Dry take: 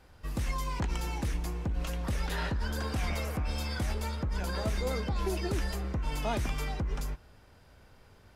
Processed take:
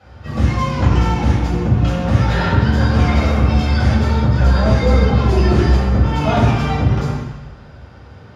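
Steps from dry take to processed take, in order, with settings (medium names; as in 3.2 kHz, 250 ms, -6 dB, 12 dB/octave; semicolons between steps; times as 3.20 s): octave divider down 2 oct, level 0 dB; hum notches 50/100/150/200 Hz; reverberation RT60 1.1 s, pre-delay 3 ms, DRR -9.5 dB; trim -4 dB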